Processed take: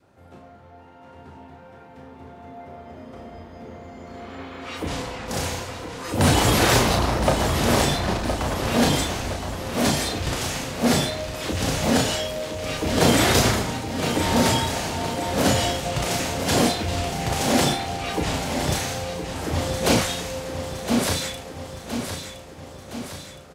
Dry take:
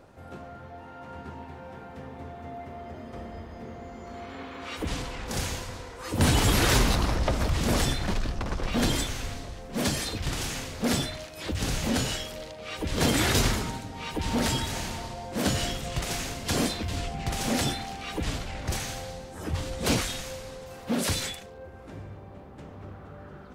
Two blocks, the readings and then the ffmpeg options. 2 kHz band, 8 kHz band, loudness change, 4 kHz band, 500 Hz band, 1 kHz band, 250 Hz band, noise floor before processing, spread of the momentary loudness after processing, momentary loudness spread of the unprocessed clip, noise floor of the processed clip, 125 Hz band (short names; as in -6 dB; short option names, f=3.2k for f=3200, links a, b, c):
+6.0 dB, +5.5 dB, +6.0 dB, +5.5 dB, +8.5 dB, +8.5 dB, +6.5 dB, -45 dBFS, 20 LU, 19 LU, -46 dBFS, +4.5 dB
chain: -filter_complex "[0:a]highpass=69,adynamicequalizer=threshold=0.00891:dfrequency=670:dqfactor=1.1:tfrequency=670:tqfactor=1.1:attack=5:release=100:ratio=0.375:range=2.5:mode=boostabove:tftype=bell,dynaudnorm=f=870:g=9:m=11.5dB,asplit=2[a][b];[b]adelay=34,volume=-5dB[c];[a][c]amix=inputs=2:normalize=0,aecho=1:1:1016|2032|3048|4064|5080|6096|7112:0.376|0.21|0.118|0.066|0.037|0.0207|0.0116,volume=-4.5dB"